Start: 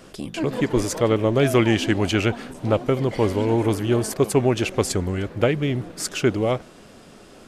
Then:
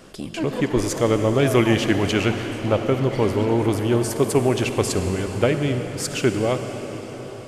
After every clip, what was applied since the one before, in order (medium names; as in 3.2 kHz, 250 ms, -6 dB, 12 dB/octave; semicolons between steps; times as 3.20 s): reverberation RT60 5.2 s, pre-delay 46 ms, DRR 6 dB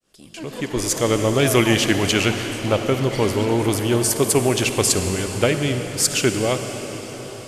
fade-in on the opening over 1.18 s; treble shelf 2.9 kHz +11.5 dB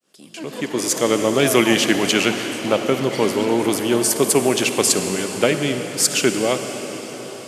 high-pass 160 Hz 24 dB/octave; trim +1.5 dB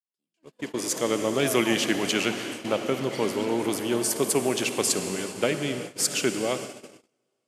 gate -26 dBFS, range -37 dB; trim -7.5 dB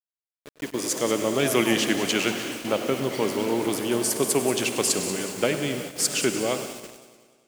bit crusher 7-bit; feedback echo behind a high-pass 184 ms, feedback 35%, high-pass 4.8 kHz, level -10 dB; modulated delay 100 ms, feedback 68%, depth 93 cents, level -15.5 dB; trim +1 dB